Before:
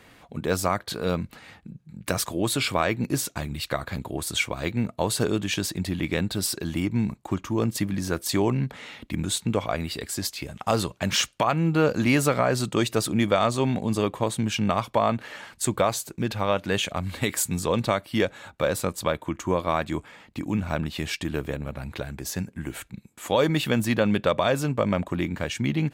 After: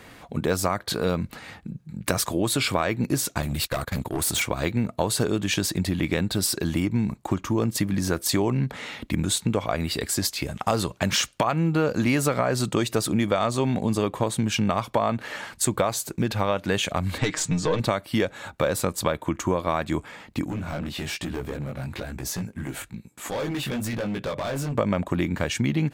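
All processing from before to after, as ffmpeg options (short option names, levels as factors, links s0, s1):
-filter_complex "[0:a]asettb=1/sr,asplit=3[s0][s1][s2];[s0]atrim=end=3.424[s3];[s1]atrim=start=3.42:end=4.42,asetpts=PTS-STARTPTS,afade=t=in:d=0.004:c=qsin,afade=t=out:st=0.996:d=0.004:c=qsin,agate=range=0.158:threshold=0.0141:ratio=16:release=100:detection=peak,highshelf=f=7500:g=8.5,volume=22.4,asoftclip=hard,volume=0.0447[s4];[s2]atrim=start=4.416[s5];[s3][s4]acrossfade=d=0.004:c1=hsin:c2=qsin[s6];[s6][s5]acrossfade=d=0.004:c1=qsin:c2=hsin,asettb=1/sr,asplit=3[s7][s8][s9];[s7]atrim=end=17.184[s10];[s8]atrim=start=17.18:end=17.8,asetpts=PTS-STARTPTS,afade=t=in:d=0.004:c=qsin,afade=t=out:st=0.616:d=0.004:c=qsin,lowpass=f=6600:w=0.5412,lowpass=f=6600:w=1.3066,aeval=exprs='(tanh(5.62*val(0)+0.45)-tanh(0.45))/5.62':c=same,aecho=1:1:6.5:0.76,atrim=end_sample=27342[s11];[s9]atrim=start=17.796[s12];[s10][s11]acrossfade=d=0.004:c1=hsin:c2=qsin[s13];[s13][s12]acrossfade=d=0.004:c1=qsin:c2=hsin,asettb=1/sr,asplit=3[s14][s15][s16];[s14]atrim=end=20.464[s17];[s15]atrim=start=20.46:end=24.75,asetpts=PTS-STARTPTS,afade=t=in:d=0.004:c=qsin,afade=t=out:st=4.286:d=0.004:c=qsin,acompressor=threshold=0.0447:ratio=2.5:attack=3.2:release=140:knee=1:detection=peak,flanger=delay=16:depth=6.2:speed=1.1,asoftclip=type=hard:threshold=0.0282[s18];[s16]atrim=start=24.746[s19];[s17][s18]acrossfade=d=0.004:c1=hsin:c2=qsin[s20];[s20][s19]acrossfade=d=0.004:c1=qsin:c2=hsin,equalizer=f=2900:t=o:w=0.77:g=-2,acompressor=threshold=0.0447:ratio=3,volume=2"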